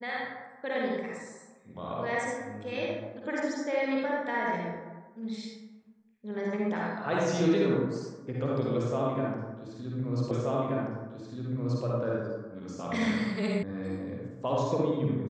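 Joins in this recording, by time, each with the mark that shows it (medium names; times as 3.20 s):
10.31 s: repeat of the last 1.53 s
13.63 s: sound stops dead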